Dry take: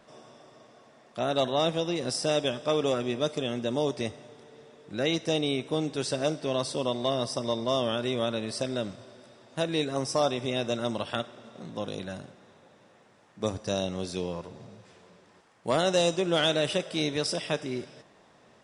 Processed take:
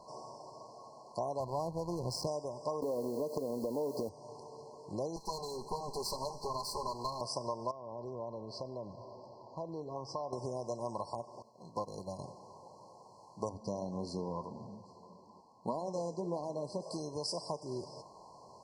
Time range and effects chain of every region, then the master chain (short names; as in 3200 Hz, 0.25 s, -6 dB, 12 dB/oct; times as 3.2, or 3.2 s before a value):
1.4–2.27 bell 81 Hz +12 dB 2.2 oct + backlash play -28.5 dBFS
2.82–4.09 small resonant body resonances 270/460/2600/3700 Hz, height 18 dB, ringing for 25 ms + compressor 16:1, threshold -18 dBFS + requantised 8-bit, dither triangular
5.16–7.21 minimum comb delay 4.9 ms + bell 640 Hz -7 dB 0.25 oct
7.71–10.33 air absorption 210 m + compressor 2:1, threshold -47 dBFS
11.42–12.19 bell 3200 Hz +9 dB 0.44 oct + sample leveller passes 1 + upward expander 2.5:1, over -40 dBFS
13.49–16.82 LPF 3600 Hz 6 dB/oct + bell 230 Hz +14 dB 0.53 oct + flange 1.7 Hz, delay 2.1 ms, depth 6 ms, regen -75%
whole clip: fifteen-band EQ 250 Hz -7 dB, 1000 Hz +10 dB, 4000 Hz +6 dB; compressor 5:1, threshold -35 dBFS; FFT band-reject 1100–4100 Hz; gain +1 dB